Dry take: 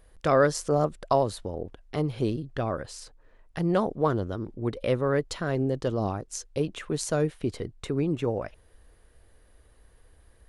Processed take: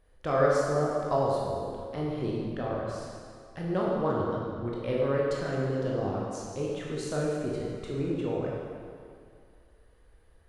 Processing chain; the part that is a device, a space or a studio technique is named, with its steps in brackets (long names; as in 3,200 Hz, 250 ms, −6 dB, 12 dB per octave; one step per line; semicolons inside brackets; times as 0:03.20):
swimming-pool hall (convolution reverb RT60 2.3 s, pre-delay 15 ms, DRR −4.5 dB; high-shelf EQ 5,600 Hz −8 dB)
level −7.5 dB